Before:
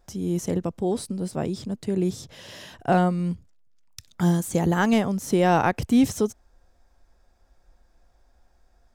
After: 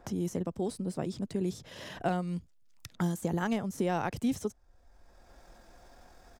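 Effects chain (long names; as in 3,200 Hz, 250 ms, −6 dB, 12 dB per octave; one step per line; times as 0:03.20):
tempo change 1.4×
multiband upward and downward compressor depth 70%
level −9 dB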